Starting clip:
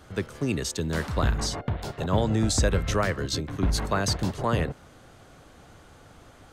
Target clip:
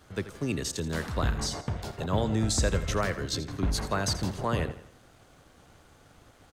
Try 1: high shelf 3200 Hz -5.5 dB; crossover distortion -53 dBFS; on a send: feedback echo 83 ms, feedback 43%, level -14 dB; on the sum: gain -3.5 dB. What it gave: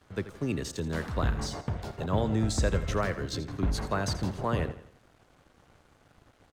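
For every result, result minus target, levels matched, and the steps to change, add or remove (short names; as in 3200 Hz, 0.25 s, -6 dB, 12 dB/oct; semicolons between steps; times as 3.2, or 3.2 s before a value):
8000 Hz band -5.5 dB; crossover distortion: distortion +7 dB
change: high shelf 3200 Hz +2 dB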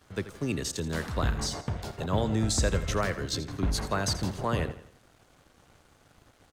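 crossover distortion: distortion +7 dB
change: crossover distortion -60 dBFS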